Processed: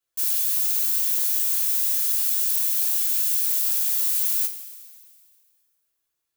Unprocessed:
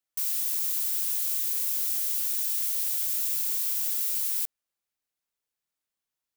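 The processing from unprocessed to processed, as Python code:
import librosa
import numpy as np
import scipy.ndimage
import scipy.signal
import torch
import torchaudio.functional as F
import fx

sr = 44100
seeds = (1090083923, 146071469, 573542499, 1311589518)

y = fx.highpass(x, sr, hz=270.0, slope=12, at=(0.92, 3.26))
y = fx.rev_double_slope(y, sr, seeds[0], early_s=0.2, late_s=2.0, knee_db=-19, drr_db=-6.5)
y = y * 10.0 ** (-2.0 / 20.0)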